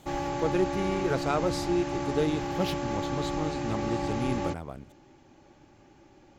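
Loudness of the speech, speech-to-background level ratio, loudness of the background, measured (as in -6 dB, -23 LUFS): -32.0 LUFS, 0.5 dB, -32.5 LUFS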